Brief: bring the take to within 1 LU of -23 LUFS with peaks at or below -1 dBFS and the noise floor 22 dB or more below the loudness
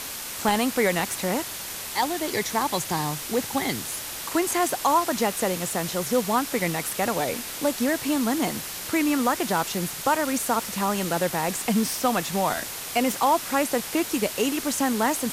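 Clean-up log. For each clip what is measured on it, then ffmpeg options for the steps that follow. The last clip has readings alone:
noise floor -35 dBFS; noise floor target -47 dBFS; loudness -25.0 LUFS; peak level -9.5 dBFS; loudness target -23.0 LUFS
-> -af "afftdn=nr=12:nf=-35"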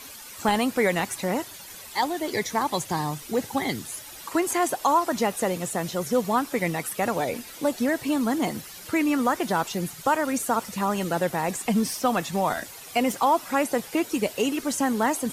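noise floor -43 dBFS; noise floor target -48 dBFS
-> -af "afftdn=nr=6:nf=-43"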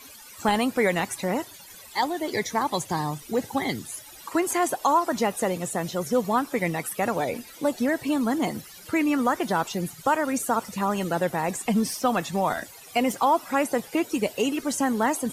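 noise floor -46 dBFS; noise floor target -48 dBFS
-> -af "afftdn=nr=6:nf=-46"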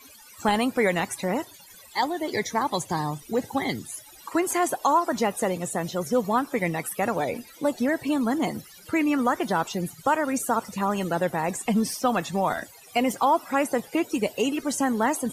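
noise floor -49 dBFS; loudness -26.0 LUFS; peak level -10.5 dBFS; loudness target -23.0 LUFS
-> -af "volume=1.41"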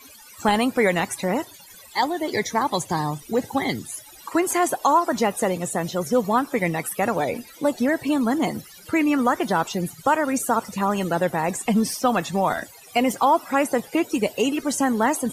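loudness -23.0 LUFS; peak level -7.5 dBFS; noise floor -46 dBFS

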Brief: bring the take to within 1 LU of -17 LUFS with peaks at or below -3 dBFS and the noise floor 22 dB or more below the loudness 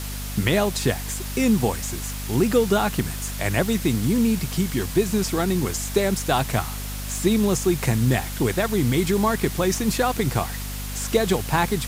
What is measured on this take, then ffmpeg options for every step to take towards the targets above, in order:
hum 50 Hz; highest harmonic 250 Hz; hum level -30 dBFS; noise floor -31 dBFS; noise floor target -45 dBFS; loudness -23.0 LUFS; peak level -7.0 dBFS; loudness target -17.0 LUFS
-> -af "bandreject=f=50:t=h:w=6,bandreject=f=100:t=h:w=6,bandreject=f=150:t=h:w=6,bandreject=f=200:t=h:w=6,bandreject=f=250:t=h:w=6"
-af "afftdn=nr=14:nf=-31"
-af "volume=2,alimiter=limit=0.708:level=0:latency=1"

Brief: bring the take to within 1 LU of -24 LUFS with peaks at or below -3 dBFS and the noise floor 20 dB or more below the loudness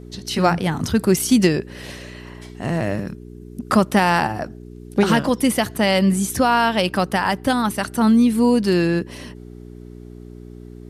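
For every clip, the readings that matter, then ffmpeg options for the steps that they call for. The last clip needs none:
hum 60 Hz; highest harmonic 420 Hz; hum level -36 dBFS; loudness -19.0 LUFS; peak level -4.0 dBFS; loudness target -24.0 LUFS
-> -af "bandreject=f=60:t=h:w=4,bandreject=f=120:t=h:w=4,bandreject=f=180:t=h:w=4,bandreject=f=240:t=h:w=4,bandreject=f=300:t=h:w=4,bandreject=f=360:t=h:w=4,bandreject=f=420:t=h:w=4"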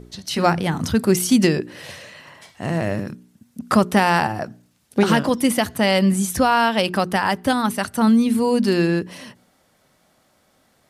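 hum not found; loudness -19.5 LUFS; peak level -3.0 dBFS; loudness target -24.0 LUFS
-> -af "volume=0.596"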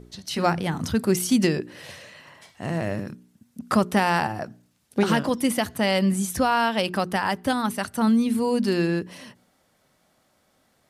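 loudness -23.5 LUFS; peak level -7.5 dBFS; noise floor -66 dBFS

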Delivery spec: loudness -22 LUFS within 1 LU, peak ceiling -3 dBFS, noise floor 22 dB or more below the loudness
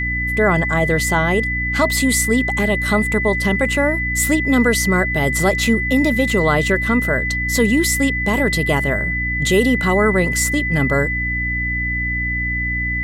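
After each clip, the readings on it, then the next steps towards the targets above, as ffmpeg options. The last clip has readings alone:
hum 60 Hz; highest harmonic 300 Hz; hum level -23 dBFS; steady tone 2 kHz; tone level -20 dBFS; loudness -17.0 LUFS; peak level -4.0 dBFS; loudness target -22.0 LUFS
-> -af "bandreject=f=60:t=h:w=4,bandreject=f=120:t=h:w=4,bandreject=f=180:t=h:w=4,bandreject=f=240:t=h:w=4,bandreject=f=300:t=h:w=4"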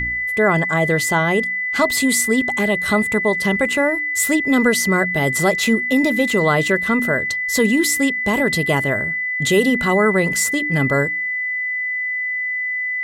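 hum not found; steady tone 2 kHz; tone level -20 dBFS
-> -af "bandreject=f=2000:w=30"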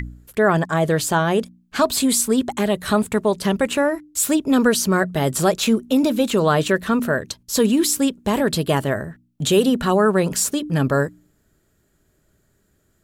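steady tone not found; loudness -19.5 LUFS; peak level -4.5 dBFS; loudness target -22.0 LUFS
-> -af "volume=0.75"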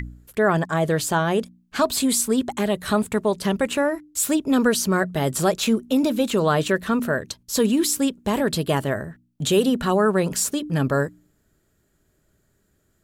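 loudness -22.0 LUFS; peak level -7.0 dBFS; noise floor -67 dBFS

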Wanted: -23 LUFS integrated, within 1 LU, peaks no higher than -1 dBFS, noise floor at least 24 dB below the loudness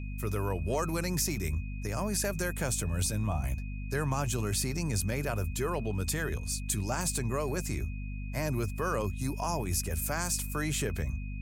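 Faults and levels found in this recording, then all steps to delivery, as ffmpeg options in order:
hum 50 Hz; highest harmonic 250 Hz; hum level -35 dBFS; steady tone 2.5 kHz; tone level -50 dBFS; loudness -32.5 LUFS; peak level -15.5 dBFS; loudness target -23.0 LUFS
-> -af "bandreject=f=50:t=h:w=4,bandreject=f=100:t=h:w=4,bandreject=f=150:t=h:w=4,bandreject=f=200:t=h:w=4,bandreject=f=250:t=h:w=4"
-af "bandreject=f=2500:w=30"
-af "volume=2.99"

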